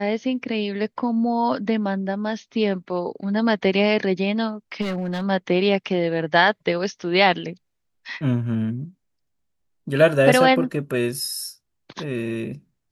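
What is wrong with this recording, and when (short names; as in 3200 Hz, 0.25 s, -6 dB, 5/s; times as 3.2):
4.81–5.25 clipped -22 dBFS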